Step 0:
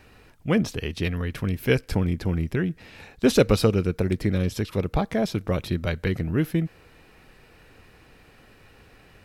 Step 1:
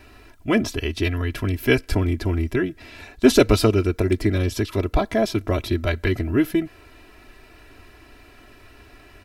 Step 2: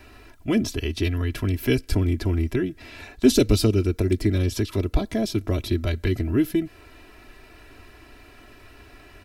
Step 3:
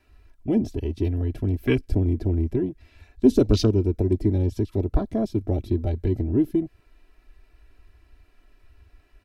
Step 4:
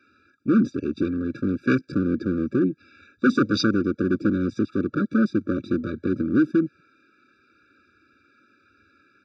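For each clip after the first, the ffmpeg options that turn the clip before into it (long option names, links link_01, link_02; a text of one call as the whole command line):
ffmpeg -i in.wav -af "aecho=1:1:3:0.8,volume=2.5dB" out.wav
ffmpeg -i in.wav -filter_complex "[0:a]acrossover=split=410|3000[link_01][link_02][link_03];[link_02]acompressor=threshold=-37dB:ratio=3[link_04];[link_01][link_04][link_03]amix=inputs=3:normalize=0" out.wav
ffmpeg -i in.wav -af "afwtdn=0.0282" out.wav
ffmpeg -i in.wav -af "volume=20dB,asoftclip=hard,volume=-20dB,highpass=frequency=160:width=0.5412,highpass=frequency=160:width=1.3066,equalizer=frequency=420:width_type=q:width=4:gain=-9,equalizer=frequency=630:width_type=q:width=4:gain=-4,equalizer=frequency=920:width_type=q:width=4:gain=5,equalizer=frequency=1500:width_type=q:width=4:gain=9,equalizer=frequency=2800:width_type=q:width=4:gain=-7,lowpass=frequency=5500:width=0.5412,lowpass=frequency=5500:width=1.3066,afftfilt=real='re*eq(mod(floor(b*sr/1024/570),2),0)':imag='im*eq(mod(floor(b*sr/1024/570),2),0)':win_size=1024:overlap=0.75,volume=7.5dB" out.wav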